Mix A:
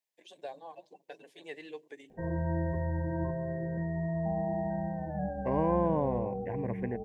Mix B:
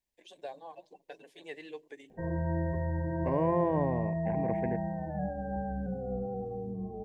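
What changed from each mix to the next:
second voice: entry −2.20 s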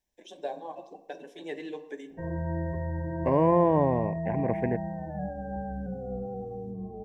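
first voice: send on
second voice +6.5 dB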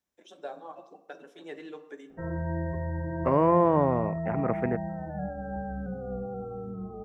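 first voice −4.5 dB
second voice: add high-pass filter 96 Hz
master: remove Butterworth band-reject 1,300 Hz, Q 2.3

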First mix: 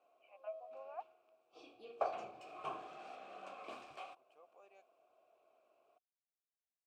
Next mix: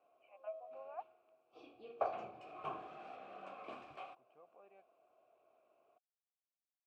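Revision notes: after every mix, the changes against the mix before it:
second voice: add bass and treble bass +12 dB, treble −14 dB
master: add bass and treble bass +5 dB, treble −12 dB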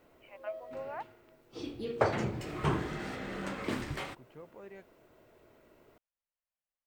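master: remove formant filter a

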